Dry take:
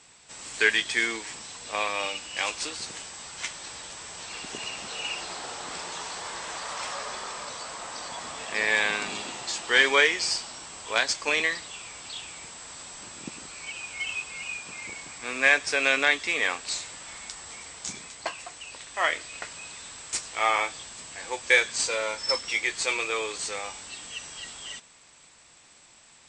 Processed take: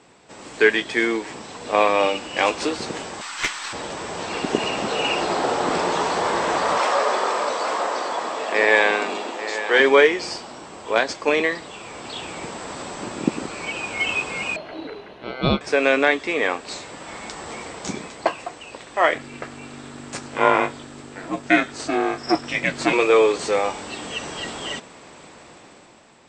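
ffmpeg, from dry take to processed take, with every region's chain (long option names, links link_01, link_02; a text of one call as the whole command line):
ffmpeg -i in.wav -filter_complex "[0:a]asettb=1/sr,asplit=3[link_01][link_02][link_03];[link_01]atrim=end=3.214[link_04];[link_02]atrim=start=3.21:end=3.73,asetpts=PTS-STARTPTS,afade=type=in:duration=0.004:curve=qsin,afade=type=out:start_time=0.516:duration=0.004:curve=qsin,highpass=frequency=1100:width=0.5412,highpass=frequency=1100:width=1.3066,acontrast=34,aeval=exprs='(tanh(7.08*val(0)+0.35)-tanh(0.35))/7.08':channel_layout=same[link_05];[link_03]atrim=start=3.726[link_06];[link_04][link_05]acrossfade=duration=0.004:curve1=hsin:curve2=qsin[link_07];[link_07][link_06]acrossfade=duration=0.004:curve1=qsin:curve2=hsin,asettb=1/sr,asplit=3[link_08][link_09][link_10];[link_08]atrim=end=6.794[link_11];[link_09]atrim=start=6.79:end=9.8,asetpts=PTS-STARTPTS,afade=type=in:duration=0.004:curve=qsin,afade=type=out:start_time=3.006:duration=0.004:curve=qsin,highpass=370,aecho=1:1:847:0.398,atrim=end_sample=132741[link_12];[link_10]atrim=start=9.796[link_13];[link_11][link_12]acrossfade=duration=0.004:curve1=hsin:curve2=qsin[link_14];[link_14][link_13]acrossfade=duration=0.004:curve1=qsin:curve2=hsin,asettb=1/sr,asplit=3[link_15][link_16][link_17];[link_15]atrim=end=14.564[link_18];[link_16]atrim=start=14.56:end=15.61,asetpts=PTS-STARTPTS,afade=type=in:duration=0.004:curve=qsin,afade=type=out:start_time=1.046:duration=0.004:curve=qsin,lowpass=1800,aeval=exprs='val(0)*sin(2*PI*1800*n/s)':channel_layout=same[link_19];[link_17]atrim=start=15.606[link_20];[link_18][link_19]acrossfade=duration=0.004:curve1=hsin:curve2=qsin[link_21];[link_21][link_20]acrossfade=duration=0.004:curve1=qsin:curve2=hsin,asettb=1/sr,asplit=3[link_22][link_23][link_24];[link_22]atrim=end=19.144[link_25];[link_23]atrim=start=19.14:end=22.93,asetpts=PTS-STARTPTS,afade=type=in:duration=0.004:curve=qsin,afade=type=out:start_time=3.786:duration=0.004:curve=qsin,equalizer=frequency=1500:width=7.3:gain=6,aeval=exprs='val(0)+0.00355*(sin(2*PI*50*n/s)+sin(2*PI*2*50*n/s)/2+sin(2*PI*3*50*n/s)/3+sin(2*PI*4*50*n/s)/4+sin(2*PI*5*50*n/s)/5)':channel_layout=same,aeval=exprs='val(0)*sin(2*PI*190*n/s)':channel_layout=same[link_26];[link_24]atrim=start=22.926[link_27];[link_25][link_26]acrossfade=duration=0.004:curve1=hsin:curve2=qsin[link_28];[link_28][link_27]acrossfade=duration=0.004:curve1=qsin:curve2=hsin,equalizer=frequency=350:width=0.35:gain=14.5,dynaudnorm=framelen=120:gausssize=13:maxgain=9dB,highshelf=frequency=7100:gain=-11.5,volume=-1dB" out.wav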